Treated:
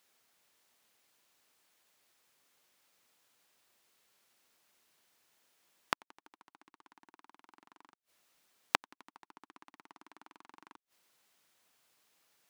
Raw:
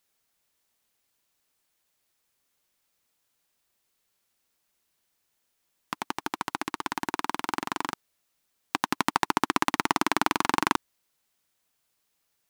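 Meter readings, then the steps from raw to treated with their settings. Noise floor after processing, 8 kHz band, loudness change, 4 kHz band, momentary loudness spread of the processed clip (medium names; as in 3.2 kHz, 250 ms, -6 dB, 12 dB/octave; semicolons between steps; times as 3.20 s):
under -85 dBFS, -17.0 dB, -9.0 dB, -13.5 dB, 4 LU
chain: high-pass 230 Hz 6 dB/octave; treble shelf 5.9 kHz -6 dB; in parallel at +0.5 dB: peak limiter -14.5 dBFS, peak gain reduction 11 dB; on the sum: inverted gate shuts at -20 dBFS, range -35 dB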